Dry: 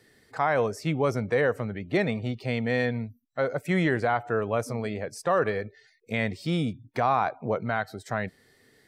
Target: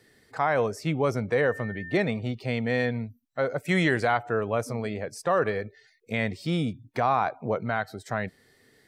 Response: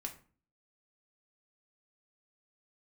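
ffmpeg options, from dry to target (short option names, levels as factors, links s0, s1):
-filter_complex "[0:a]asettb=1/sr,asplit=3[s0][s1][s2];[s0]atrim=end=1.384[s3];[s1]atrim=start=1.38:end=2.02,asetpts=PTS-STARTPTS,afade=t=in:d=0.004:c=qsin,afade=t=out:st=0.636:d=0.004:c=qsin,aeval=exprs='val(0)+0.0126*sin(2*PI*1800*n/s)':c=same[s4];[s2]atrim=start=2.016[s5];[s3][s4]acrossfade=d=0.004:c1=hsin:c2=qsin[s6];[s6][s5]acrossfade=d=0.004:c1=qsin:c2=hsin,asplit=3[s7][s8][s9];[s7]afade=t=out:st=3.67:d=0.02[s10];[s8]highshelf=f=2400:g=9,afade=t=in:st=3.67:d=0.02,afade=t=out:st=4.17:d=0.02[s11];[s9]afade=t=in:st=4.17:d=0.02[s12];[s10][s11][s12]amix=inputs=3:normalize=0"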